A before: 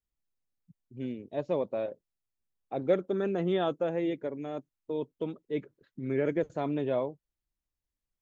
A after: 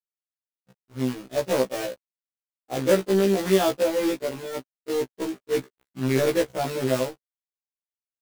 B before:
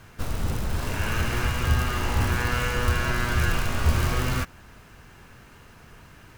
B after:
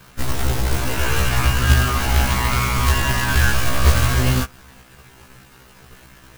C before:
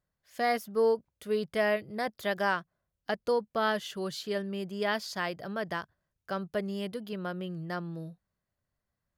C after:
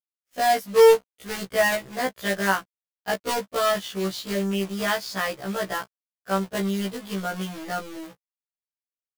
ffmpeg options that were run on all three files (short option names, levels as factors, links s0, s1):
-af "acrusher=bits=2:mode=log:mix=0:aa=0.000001,aeval=exprs='sgn(val(0))*max(abs(val(0))-0.002,0)':c=same,afftfilt=real='re*1.73*eq(mod(b,3),0)':imag='im*1.73*eq(mod(b,3),0)':win_size=2048:overlap=0.75,volume=2.66"